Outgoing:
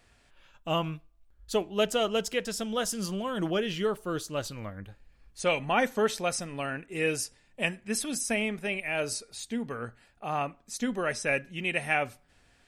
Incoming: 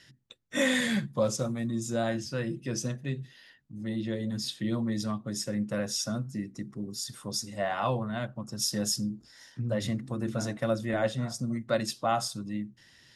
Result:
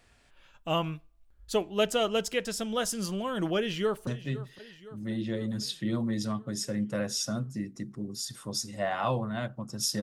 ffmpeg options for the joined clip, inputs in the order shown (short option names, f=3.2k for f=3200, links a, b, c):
-filter_complex "[0:a]apad=whole_dur=10.02,atrim=end=10.02,atrim=end=4.072[a];[1:a]atrim=start=2.858:end=8.81[b];[a][b]acrossfade=d=0.004:c1=hsin:c2=hsin,asplit=2[c][d];[d]afade=t=in:st=3.57:d=0.01,afade=t=out:st=4.07:d=0.01,aecho=0:1:510|1020|1530|2040|2550|3060|3570:0.158489|0.103018|0.0669617|0.0435251|0.0282913|0.0183894|0.0119531[e];[c][e]amix=inputs=2:normalize=0"